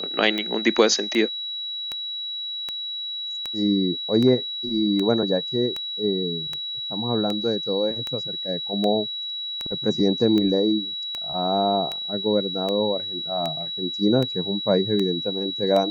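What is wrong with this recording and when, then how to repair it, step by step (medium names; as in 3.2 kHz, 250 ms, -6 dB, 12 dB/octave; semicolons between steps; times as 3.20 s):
tick 78 rpm -14 dBFS
whine 3.9 kHz -28 dBFS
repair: de-click; band-stop 3.9 kHz, Q 30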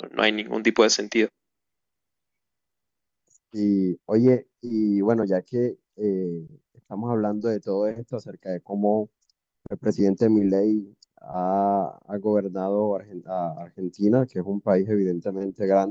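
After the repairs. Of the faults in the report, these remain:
nothing left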